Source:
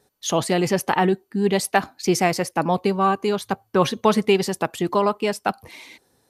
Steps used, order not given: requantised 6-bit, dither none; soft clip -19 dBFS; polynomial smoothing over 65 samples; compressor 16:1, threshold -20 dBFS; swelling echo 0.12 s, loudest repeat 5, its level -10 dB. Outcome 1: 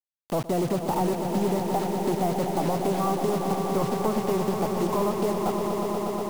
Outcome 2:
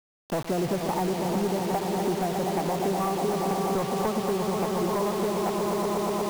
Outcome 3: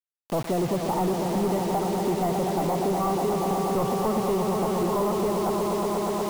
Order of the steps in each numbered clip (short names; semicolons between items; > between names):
soft clip > polynomial smoothing > requantised > swelling echo > compressor; swelling echo > compressor > polynomial smoothing > soft clip > requantised; swelling echo > soft clip > polynomial smoothing > requantised > compressor